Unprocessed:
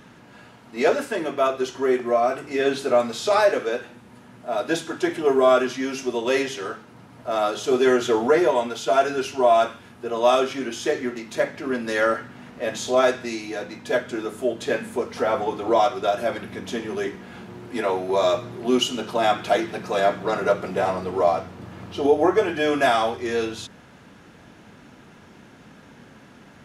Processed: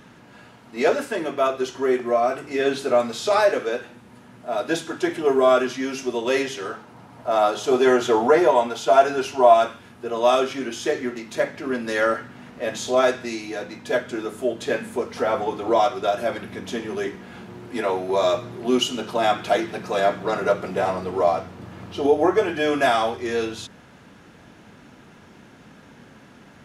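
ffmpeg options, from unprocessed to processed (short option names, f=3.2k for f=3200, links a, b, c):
-filter_complex "[0:a]asettb=1/sr,asplit=3[a][b][c];[a]atrim=end=6.734[d];[b]atrim=start=6.73:end=9.54,asetpts=PTS-STARTPTS,afade=t=in:d=0.004:c=qsin,afade=t=out:st=2.806:d=0.004:c=qsin,equalizer=f=830:w=1.5:g=6[e];[c]atrim=start=9.536[f];[d][e]acrossfade=d=0.004:c1=hsin:c2=qsin[g];[g][f]acrossfade=d=0.004:c1=qsin:c2=hsin"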